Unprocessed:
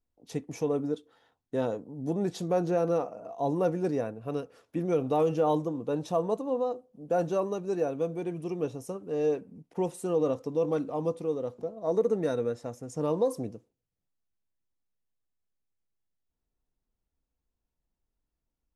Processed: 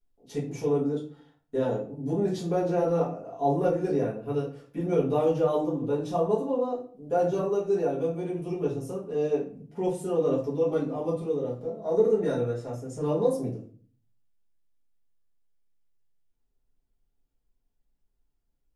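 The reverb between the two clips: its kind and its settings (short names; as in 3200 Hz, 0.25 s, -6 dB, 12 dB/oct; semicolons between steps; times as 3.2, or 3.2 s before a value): shoebox room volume 34 m³, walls mixed, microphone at 1.3 m; gain -7 dB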